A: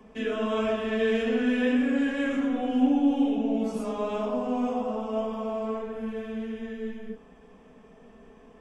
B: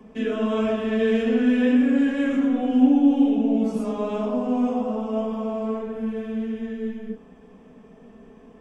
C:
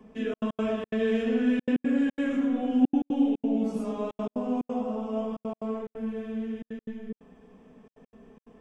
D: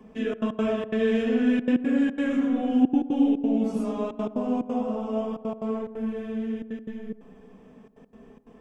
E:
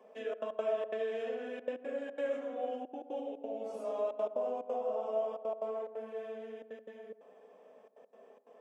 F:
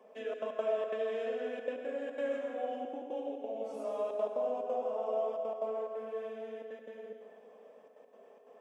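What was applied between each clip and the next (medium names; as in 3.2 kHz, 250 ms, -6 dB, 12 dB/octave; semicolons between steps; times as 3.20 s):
peaking EQ 210 Hz +6.5 dB 2.2 oct
trance gate "xxxx.x.xxx.xxxx" 179 bpm -60 dB; trim -5 dB
filtered feedback delay 85 ms, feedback 77%, low-pass 1.4 kHz, level -16 dB; trim +2.5 dB
compression 3:1, threshold -27 dBFS, peak gain reduction 10 dB; resonant high-pass 570 Hz, resonance Q 4.9; trim -8.5 dB
plate-style reverb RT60 1.8 s, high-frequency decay 0.9×, pre-delay 85 ms, DRR 4.5 dB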